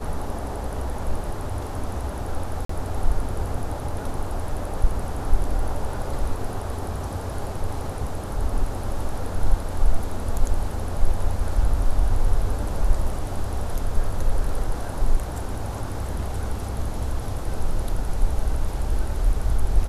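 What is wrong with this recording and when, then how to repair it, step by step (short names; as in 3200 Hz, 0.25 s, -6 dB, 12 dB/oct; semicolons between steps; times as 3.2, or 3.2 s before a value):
2.65–2.69 gap 44 ms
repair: interpolate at 2.65, 44 ms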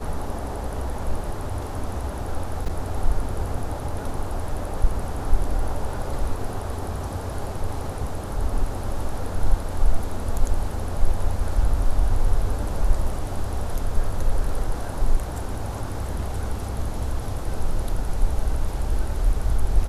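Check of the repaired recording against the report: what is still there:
none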